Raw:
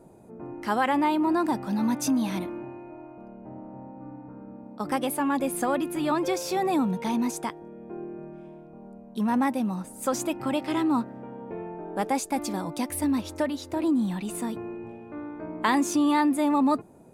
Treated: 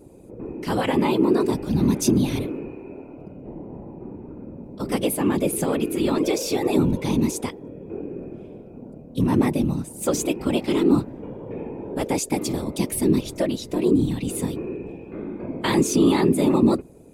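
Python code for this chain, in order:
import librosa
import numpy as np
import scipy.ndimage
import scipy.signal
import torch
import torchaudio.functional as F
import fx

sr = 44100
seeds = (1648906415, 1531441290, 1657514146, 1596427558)

y = fx.whisperise(x, sr, seeds[0])
y = fx.band_shelf(y, sr, hz=1100.0, db=-9.0, octaves=1.7)
y = F.gain(torch.from_numpy(y), 5.5).numpy()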